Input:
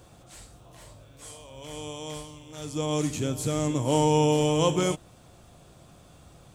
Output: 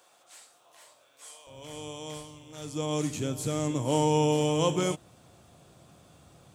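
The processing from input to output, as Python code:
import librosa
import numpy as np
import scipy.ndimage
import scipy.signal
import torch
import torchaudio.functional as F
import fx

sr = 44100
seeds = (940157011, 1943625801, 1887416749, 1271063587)

y = fx.highpass(x, sr, hz=fx.steps((0.0, 710.0), (1.47, 82.0)), slope=12)
y = y * librosa.db_to_amplitude(-2.5)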